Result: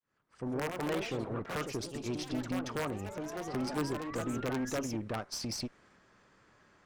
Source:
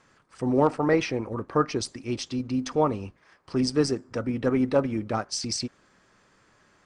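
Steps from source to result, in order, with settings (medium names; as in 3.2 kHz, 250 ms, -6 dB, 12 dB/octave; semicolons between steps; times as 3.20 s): fade-in on the opening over 0.88 s; treble shelf 5 kHz -7.5 dB; compression 2:1, threshold -32 dBFS, peak gain reduction 9 dB; painted sound rise, 3.08–4.70 s, 560–1700 Hz -45 dBFS; integer overflow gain 20 dB; valve stage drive 30 dB, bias 0.5; ever faster or slower copies 196 ms, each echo +3 st, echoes 3, each echo -6 dB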